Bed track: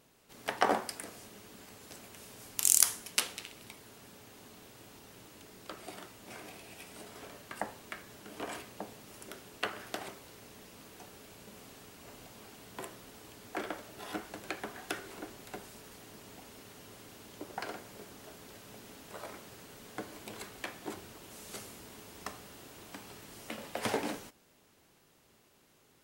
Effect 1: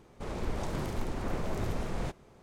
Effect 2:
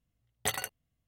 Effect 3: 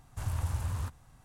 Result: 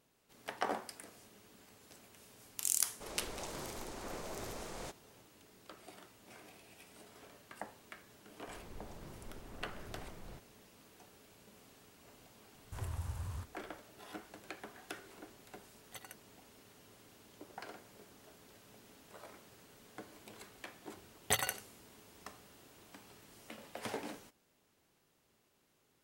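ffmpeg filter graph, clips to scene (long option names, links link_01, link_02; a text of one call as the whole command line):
ffmpeg -i bed.wav -i cue0.wav -i cue1.wav -i cue2.wav -filter_complex "[1:a]asplit=2[link_01][link_02];[2:a]asplit=2[link_03][link_04];[0:a]volume=-8.5dB[link_05];[link_01]bass=frequency=250:gain=-11,treble=frequency=4000:gain=10[link_06];[link_03]tremolo=f=14:d=0.79[link_07];[link_04]aecho=1:1:92:0.15[link_08];[link_06]atrim=end=2.42,asetpts=PTS-STARTPTS,volume=-6.5dB,afade=type=in:duration=0.004:curve=hsin,afade=type=out:start_time=2.416:duration=0.004:curve=hsin,adelay=2800[link_09];[link_02]atrim=end=2.42,asetpts=PTS-STARTPTS,volume=-17dB,afade=type=in:duration=0.004:curve=hsin,afade=type=out:start_time=2.416:duration=0.004:curve=hsin,adelay=8280[link_10];[3:a]atrim=end=1.24,asetpts=PTS-STARTPTS,volume=-8.5dB,afade=type=in:duration=0.004:curve=hsin,afade=type=out:start_time=1.236:duration=0.004:curve=hsin,adelay=12550[link_11];[link_07]atrim=end=1.07,asetpts=PTS-STARTPTS,volume=-15.5dB,afade=type=in:duration=0.004:curve=hsin,afade=type=out:start_time=1.066:duration=0.004:curve=hsin,adelay=15470[link_12];[link_08]atrim=end=1.07,asetpts=PTS-STARTPTS,volume=-0.5dB,afade=type=in:duration=0.004:curve=hsin,afade=type=out:start_time=1.066:duration=0.004:curve=hsin,adelay=20850[link_13];[link_05][link_09][link_10][link_11][link_12][link_13]amix=inputs=6:normalize=0" out.wav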